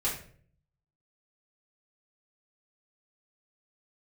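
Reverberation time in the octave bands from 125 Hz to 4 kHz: 0.95 s, 0.75 s, 0.60 s, 0.40 s, 0.45 s, 0.35 s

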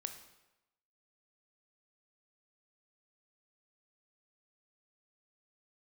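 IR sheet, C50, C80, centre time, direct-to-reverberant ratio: 9.5 dB, 12.0 dB, 15 ms, 7.0 dB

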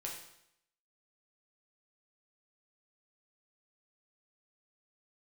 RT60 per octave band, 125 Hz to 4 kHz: 0.75 s, 0.75 s, 0.75 s, 0.75 s, 0.75 s, 0.75 s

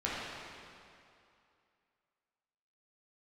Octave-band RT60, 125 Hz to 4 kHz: 2.3 s, 2.4 s, 2.5 s, 2.6 s, 2.4 s, 2.2 s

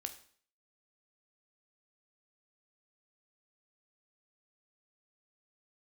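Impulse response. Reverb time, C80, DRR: 0.50 s, 16.0 dB, 7.0 dB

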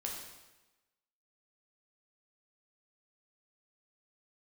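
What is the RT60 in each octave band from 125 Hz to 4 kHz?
1.0 s, 1.1 s, 1.1 s, 1.1 s, 1.0 s, 1.0 s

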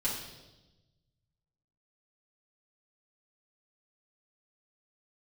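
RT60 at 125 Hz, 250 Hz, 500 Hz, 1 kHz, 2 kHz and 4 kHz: 2.1 s, 1.4 s, 1.2 s, 0.90 s, 0.90 s, 1.1 s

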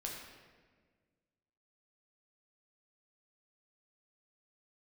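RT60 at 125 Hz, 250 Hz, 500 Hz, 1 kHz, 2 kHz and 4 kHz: 2.1 s, 2.1 s, 1.8 s, 1.4 s, 1.4 s, 1.0 s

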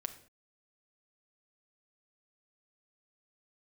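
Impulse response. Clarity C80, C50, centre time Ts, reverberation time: 15.5 dB, 12.5 dB, 8 ms, no single decay rate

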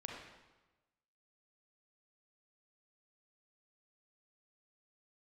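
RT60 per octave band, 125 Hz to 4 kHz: 1.2 s, 1.2 s, 1.1 s, 1.1 s, 1.0 s, 0.95 s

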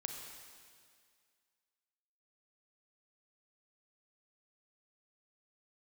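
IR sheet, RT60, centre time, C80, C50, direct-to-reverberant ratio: 2.1 s, 65 ms, 4.5 dB, 3.5 dB, 3.0 dB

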